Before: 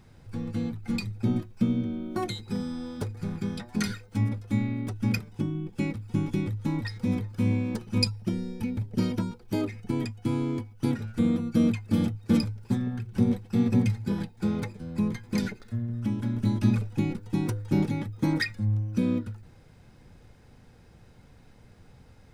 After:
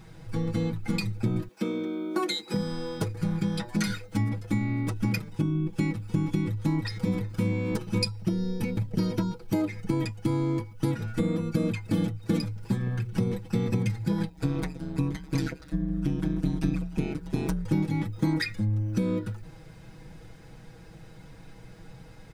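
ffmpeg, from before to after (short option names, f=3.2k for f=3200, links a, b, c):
-filter_complex "[0:a]asettb=1/sr,asplit=3[a][b][c];[a]atrim=end=1.484[d];[b]atrim=start=1.48:end=2.54,asetpts=PTS-STARTPTS,afade=t=in:d=0.004:c=qsin,afade=t=out:st=1.056:d=0.004:c=qsin,highpass=f=260:w=0.5412,highpass=f=260:w=1.3066[e];[c]atrim=start=2.536[f];[d][e]acrossfade=d=0.004:c1=hsin:c2=qsin[g];[g][f]acrossfade=d=0.004:c1=qsin:c2=hsin,asplit=3[h][i][j];[h]afade=t=out:st=14.29:d=0.02[k];[i]aeval=exprs='val(0)*sin(2*PI*72*n/s)':c=same,afade=t=in:st=14.29:d=0.02,afade=t=out:st=17.64:d=0.02[l];[j]afade=t=in:st=17.64:d=0.02[m];[k][l][m]amix=inputs=3:normalize=0,aecho=1:1:6.2:0.8,acompressor=threshold=-28dB:ratio=4,volume=4.5dB"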